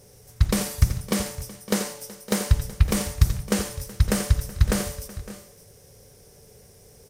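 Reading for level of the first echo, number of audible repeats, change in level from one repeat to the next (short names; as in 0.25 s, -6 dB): -10.5 dB, 3, no steady repeat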